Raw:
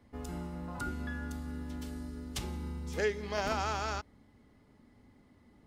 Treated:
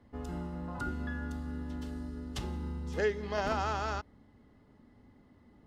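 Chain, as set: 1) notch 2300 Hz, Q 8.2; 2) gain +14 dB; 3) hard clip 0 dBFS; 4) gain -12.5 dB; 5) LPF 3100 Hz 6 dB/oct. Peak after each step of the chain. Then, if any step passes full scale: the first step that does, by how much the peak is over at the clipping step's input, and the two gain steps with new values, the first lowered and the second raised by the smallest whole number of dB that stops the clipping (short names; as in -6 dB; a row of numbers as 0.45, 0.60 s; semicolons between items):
-18.5, -4.5, -4.5, -17.0, -18.5 dBFS; no overload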